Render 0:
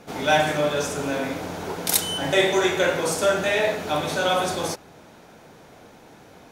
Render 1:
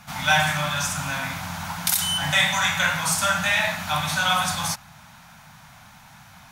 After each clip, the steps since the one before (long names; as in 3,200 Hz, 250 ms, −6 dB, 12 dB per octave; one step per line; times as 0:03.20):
Chebyshev band-stop filter 160–980 Hz, order 2
high-shelf EQ 11,000 Hz +6.5 dB
boost into a limiter +10.5 dB
level −6 dB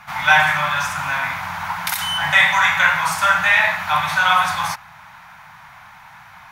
octave-band graphic EQ 250/1,000/2,000/8,000 Hz −6/+10/+9/−5 dB
level −2 dB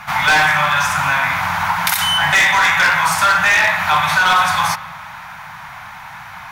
convolution reverb RT60 1.5 s, pre-delay 36 ms, DRR 17 dB
gain into a clipping stage and back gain 12.5 dB
downward compressor 2 to 1, threshold −24 dBFS, peak gain reduction 5.5 dB
level +9 dB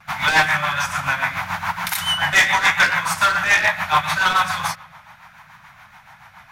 pitch vibrato 0.76 Hz 27 cents
rotating-speaker cabinet horn 7 Hz
expander for the loud parts 1.5 to 1, over −31 dBFS
level +1 dB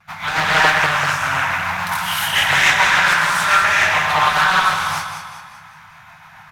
on a send: repeating echo 193 ms, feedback 45%, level −7.5 dB
on the sum: reverb whose tail is shaped and stops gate 330 ms rising, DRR −7.5 dB
highs frequency-modulated by the lows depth 0.43 ms
level −6 dB